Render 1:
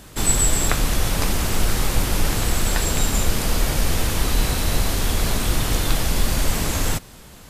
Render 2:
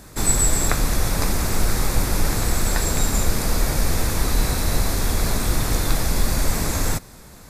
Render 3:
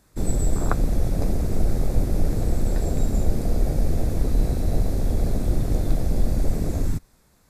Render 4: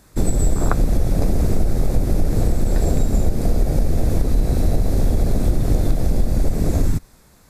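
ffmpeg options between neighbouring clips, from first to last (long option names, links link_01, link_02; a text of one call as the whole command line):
ffmpeg -i in.wav -af "equalizer=frequency=3000:width=4.3:gain=-11.5" out.wav
ffmpeg -i in.wav -af "afwtdn=0.0794" out.wav
ffmpeg -i in.wav -af "acompressor=threshold=-20dB:ratio=6,volume=8.5dB" out.wav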